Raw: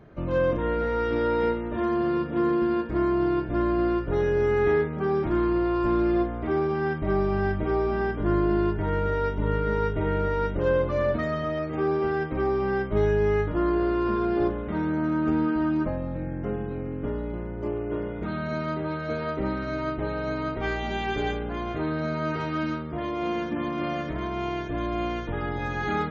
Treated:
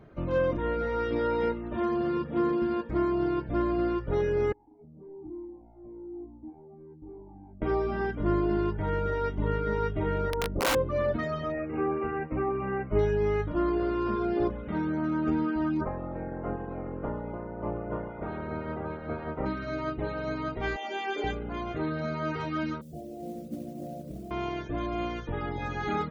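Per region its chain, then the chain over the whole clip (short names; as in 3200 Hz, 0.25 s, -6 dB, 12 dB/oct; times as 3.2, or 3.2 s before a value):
4.52–7.62 overloaded stage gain 25 dB + vocal tract filter u + cascading flanger falling 1.1 Hz
10.3–10.75 LPF 1200 Hz + wrapped overs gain 18 dB
11.52–12.99 brick-wall FIR low-pass 3000 Hz + doubler 22 ms -8 dB
15.8–19.45 spectral limiter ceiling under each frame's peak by 17 dB + LPF 1100 Hz
20.76–21.24 HPF 320 Hz 24 dB/oct + notch 3900 Hz, Q 21
22.81–24.31 rippled Chebyshev low-pass 770 Hz, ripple 9 dB + modulation noise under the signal 24 dB
whole clip: reverb removal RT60 0.63 s; notch 1700 Hz, Q 20; gain -1.5 dB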